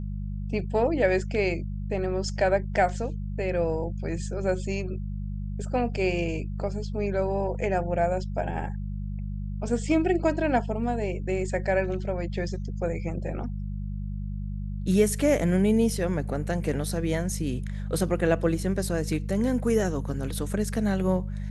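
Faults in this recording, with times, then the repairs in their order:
hum 50 Hz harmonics 4 -32 dBFS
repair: de-hum 50 Hz, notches 4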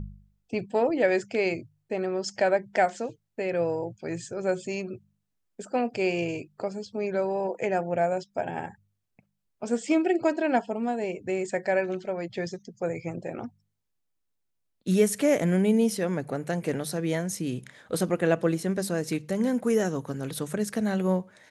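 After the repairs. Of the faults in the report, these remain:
none

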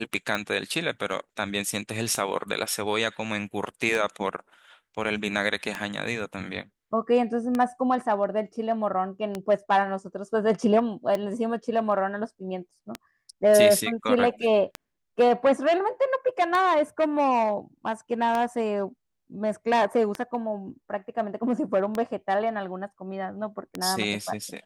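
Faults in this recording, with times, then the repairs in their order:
tick 33 1/3 rpm -14 dBFS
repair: de-click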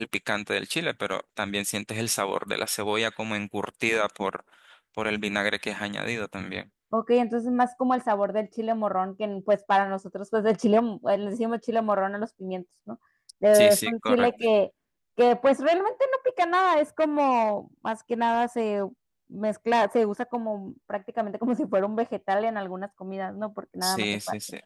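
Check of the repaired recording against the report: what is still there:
none

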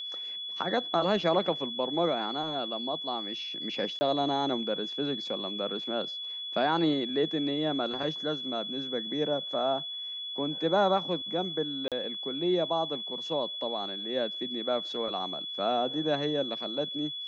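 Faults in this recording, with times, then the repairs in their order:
tone 3400 Hz -35 dBFS
3.99–4.01 gap 20 ms
11.88–11.92 gap 37 ms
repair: notch 3400 Hz, Q 30; interpolate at 3.99, 20 ms; interpolate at 11.88, 37 ms

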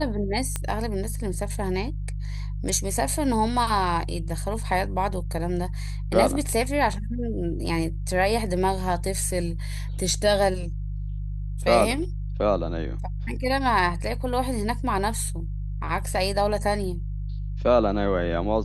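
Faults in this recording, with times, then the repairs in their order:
hum 50 Hz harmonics 3 -30 dBFS
0.56 pop -12 dBFS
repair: de-click; de-hum 50 Hz, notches 3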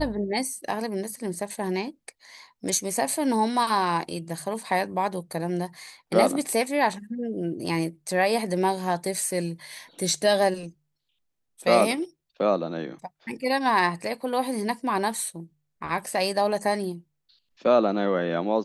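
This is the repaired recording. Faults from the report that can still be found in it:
none

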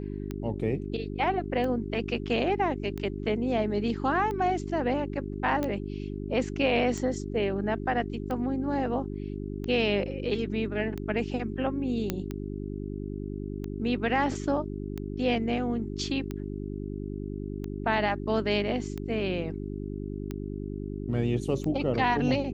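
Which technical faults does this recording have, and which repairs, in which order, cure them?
hum 50 Hz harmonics 8 -35 dBFS
tick 45 rpm -22 dBFS
5.63 pop -17 dBFS
12.1 pop -13 dBFS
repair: de-click; de-hum 50 Hz, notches 8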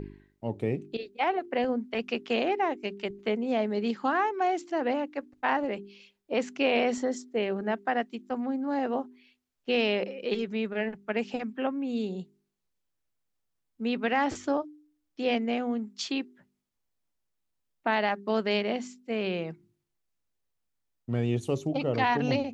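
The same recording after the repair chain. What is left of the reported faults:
none

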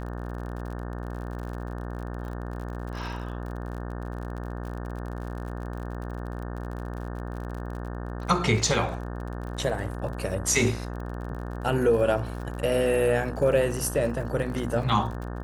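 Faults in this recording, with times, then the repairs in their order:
buzz 60 Hz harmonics 30 -34 dBFS
crackle 51/s -36 dBFS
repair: de-click; de-hum 60 Hz, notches 30

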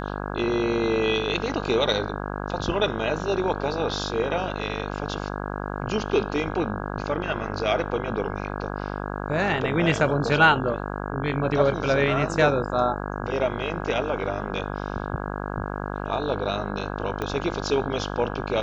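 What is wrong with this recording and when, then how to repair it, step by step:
buzz 50 Hz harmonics 33 -31 dBFS
17.22 pop -15 dBFS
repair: de-click; de-hum 50 Hz, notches 33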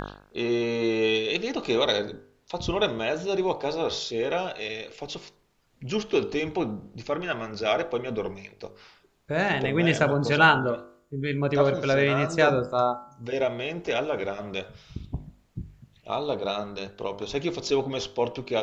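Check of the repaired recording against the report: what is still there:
17.22 pop

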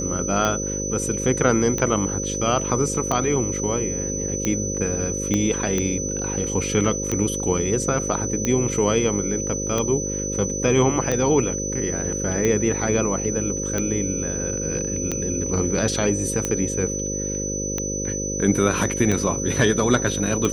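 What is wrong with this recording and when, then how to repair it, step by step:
buzz 50 Hz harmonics 11 -29 dBFS
tick 45 rpm -9 dBFS
tone 6000 Hz -27 dBFS
5.34 pop -10 dBFS
15.11–15.12 gap 5.4 ms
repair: de-click; de-hum 50 Hz, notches 11; notch 6000 Hz, Q 30; interpolate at 15.11, 5.4 ms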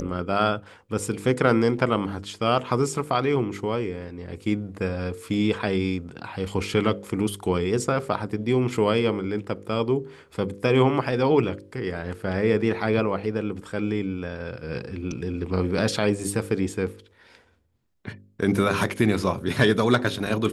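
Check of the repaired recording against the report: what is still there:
5.34 pop

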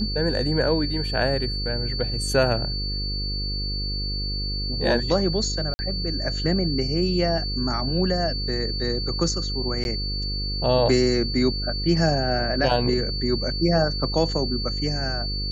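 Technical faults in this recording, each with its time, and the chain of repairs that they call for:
buzz 50 Hz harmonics 10 -29 dBFS
tone 4500 Hz -29 dBFS
5.74–5.79 gap 50 ms
9.84–9.85 gap 11 ms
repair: de-hum 50 Hz, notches 10; notch 4500 Hz, Q 30; interpolate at 5.74, 50 ms; interpolate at 9.84, 11 ms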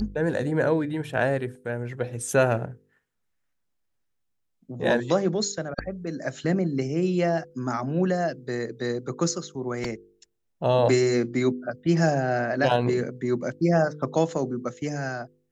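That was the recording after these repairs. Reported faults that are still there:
none

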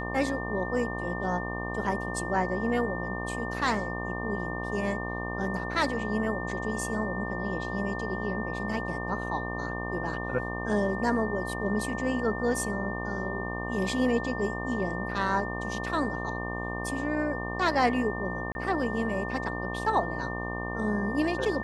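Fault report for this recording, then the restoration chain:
buzz 60 Hz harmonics 20 -35 dBFS
tone 1800 Hz -36 dBFS
18.52–18.55 gap 31 ms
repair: notch 1800 Hz, Q 30; de-hum 60 Hz, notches 20; interpolate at 18.52, 31 ms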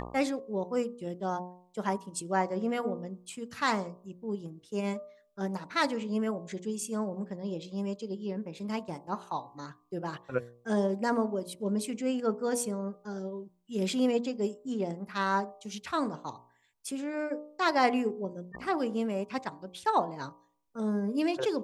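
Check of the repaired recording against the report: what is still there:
none

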